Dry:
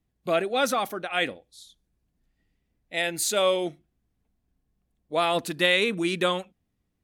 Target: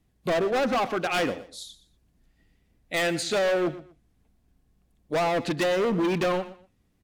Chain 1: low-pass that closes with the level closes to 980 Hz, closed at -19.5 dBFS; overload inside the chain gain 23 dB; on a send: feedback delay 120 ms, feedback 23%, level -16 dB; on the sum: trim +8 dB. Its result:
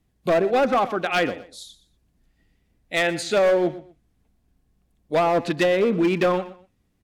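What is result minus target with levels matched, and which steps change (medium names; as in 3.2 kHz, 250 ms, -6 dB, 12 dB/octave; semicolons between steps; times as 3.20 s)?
overload inside the chain: distortion -6 dB
change: overload inside the chain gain 30 dB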